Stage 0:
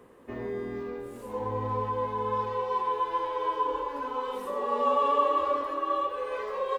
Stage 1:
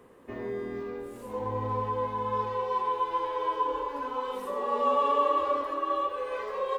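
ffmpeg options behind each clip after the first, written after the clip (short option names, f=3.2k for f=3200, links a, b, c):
-af "bandreject=f=61.28:t=h:w=4,bandreject=f=122.56:t=h:w=4,bandreject=f=183.84:t=h:w=4,bandreject=f=245.12:t=h:w=4,bandreject=f=306.4:t=h:w=4,bandreject=f=367.68:t=h:w=4,bandreject=f=428.96:t=h:w=4,bandreject=f=490.24:t=h:w=4,bandreject=f=551.52:t=h:w=4,bandreject=f=612.8:t=h:w=4,bandreject=f=674.08:t=h:w=4,bandreject=f=735.36:t=h:w=4,bandreject=f=796.64:t=h:w=4,bandreject=f=857.92:t=h:w=4,bandreject=f=919.2:t=h:w=4,bandreject=f=980.48:t=h:w=4,bandreject=f=1.04176k:t=h:w=4,bandreject=f=1.10304k:t=h:w=4,bandreject=f=1.16432k:t=h:w=4,bandreject=f=1.2256k:t=h:w=4,bandreject=f=1.28688k:t=h:w=4,bandreject=f=1.34816k:t=h:w=4,bandreject=f=1.40944k:t=h:w=4,bandreject=f=1.47072k:t=h:w=4,bandreject=f=1.532k:t=h:w=4,bandreject=f=1.59328k:t=h:w=4,bandreject=f=1.65456k:t=h:w=4,bandreject=f=1.71584k:t=h:w=4,bandreject=f=1.77712k:t=h:w=4,bandreject=f=1.8384k:t=h:w=4"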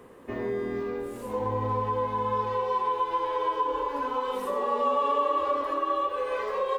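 -af "acompressor=threshold=-31dB:ratio=2,volume=5dB"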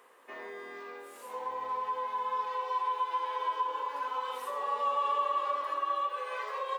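-af "highpass=870,volume=-2dB"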